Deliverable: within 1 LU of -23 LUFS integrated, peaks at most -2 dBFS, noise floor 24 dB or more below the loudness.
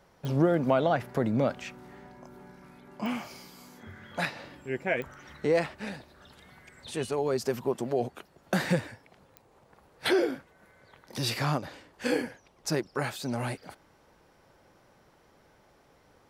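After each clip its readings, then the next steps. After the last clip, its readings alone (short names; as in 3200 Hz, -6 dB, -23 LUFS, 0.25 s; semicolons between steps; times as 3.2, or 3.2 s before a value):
clicks 4; loudness -30.5 LUFS; peak -12.0 dBFS; loudness target -23.0 LUFS
-> de-click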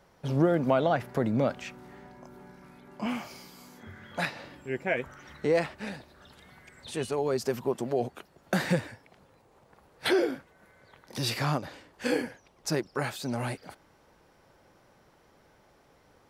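clicks 0; loudness -30.5 LUFS; peak -12.0 dBFS; loudness target -23.0 LUFS
-> gain +7.5 dB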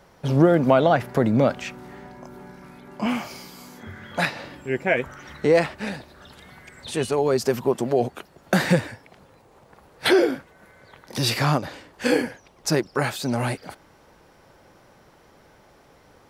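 loudness -23.0 LUFS; peak -4.5 dBFS; noise floor -55 dBFS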